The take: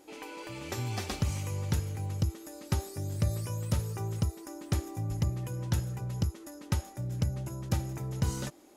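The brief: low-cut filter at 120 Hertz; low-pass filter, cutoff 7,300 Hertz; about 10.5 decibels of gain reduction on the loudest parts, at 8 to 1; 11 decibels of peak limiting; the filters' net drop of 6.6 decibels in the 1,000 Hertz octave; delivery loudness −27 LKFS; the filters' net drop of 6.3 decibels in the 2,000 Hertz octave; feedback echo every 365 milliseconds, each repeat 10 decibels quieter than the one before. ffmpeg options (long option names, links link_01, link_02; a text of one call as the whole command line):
ffmpeg -i in.wav -af "highpass=120,lowpass=7300,equalizer=frequency=1000:width_type=o:gain=-7.5,equalizer=frequency=2000:width_type=o:gain=-6,acompressor=threshold=-38dB:ratio=8,alimiter=level_in=11.5dB:limit=-24dB:level=0:latency=1,volume=-11.5dB,aecho=1:1:365|730|1095|1460:0.316|0.101|0.0324|0.0104,volume=18dB" out.wav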